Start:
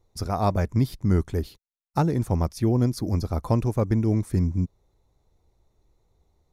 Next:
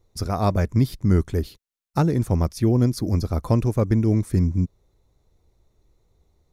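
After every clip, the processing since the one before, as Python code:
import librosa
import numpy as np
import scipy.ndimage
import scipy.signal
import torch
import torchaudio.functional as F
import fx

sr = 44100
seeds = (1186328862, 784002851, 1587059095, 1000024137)

y = fx.peak_eq(x, sr, hz=840.0, db=-4.5, octaves=0.64)
y = y * 10.0 ** (3.0 / 20.0)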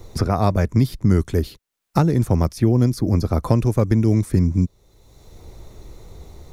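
y = fx.band_squash(x, sr, depth_pct=70)
y = y * 10.0 ** (2.5 / 20.0)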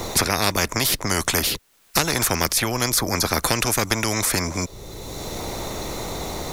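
y = fx.spectral_comp(x, sr, ratio=4.0)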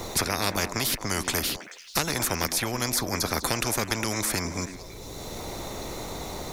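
y = fx.echo_stepped(x, sr, ms=109, hz=270.0, octaves=1.4, feedback_pct=70, wet_db=-5.5)
y = y * 10.0 ** (-6.0 / 20.0)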